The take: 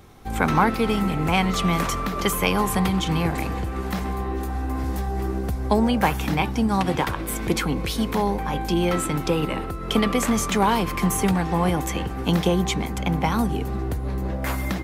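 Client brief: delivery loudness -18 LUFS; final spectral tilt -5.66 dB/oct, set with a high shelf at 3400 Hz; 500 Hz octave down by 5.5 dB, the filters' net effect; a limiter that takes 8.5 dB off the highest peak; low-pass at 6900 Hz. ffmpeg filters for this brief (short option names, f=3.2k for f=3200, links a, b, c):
-af "lowpass=6.9k,equalizer=f=500:t=o:g=-7,highshelf=f=3.4k:g=-8,volume=8.5dB,alimiter=limit=-7dB:level=0:latency=1"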